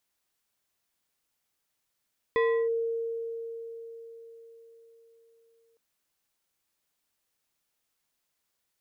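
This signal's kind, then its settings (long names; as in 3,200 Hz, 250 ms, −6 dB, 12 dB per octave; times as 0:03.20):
two-operator FM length 3.41 s, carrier 459 Hz, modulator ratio 3.24, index 0.76, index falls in 0.33 s linear, decay 4.60 s, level −20.5 dB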